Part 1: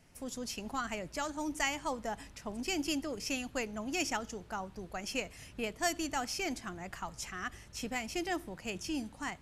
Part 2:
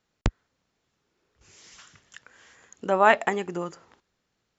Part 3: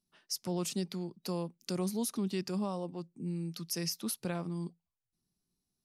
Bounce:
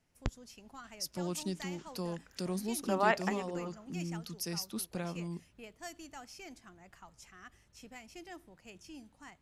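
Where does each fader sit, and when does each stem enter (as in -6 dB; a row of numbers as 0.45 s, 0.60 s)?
-13.5 dB, -10.5 dB, -2.5 dB; 0.00 s, 0.00 s, 0.70 s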